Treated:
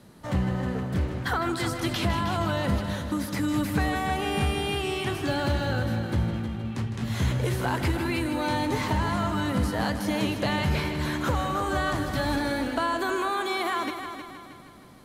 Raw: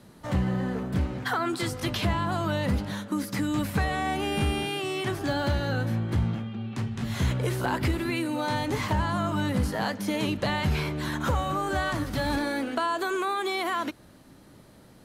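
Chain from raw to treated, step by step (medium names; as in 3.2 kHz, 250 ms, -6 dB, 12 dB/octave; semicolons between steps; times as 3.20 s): multi-head delay 157 ms, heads first and second, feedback 50%, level -11 dB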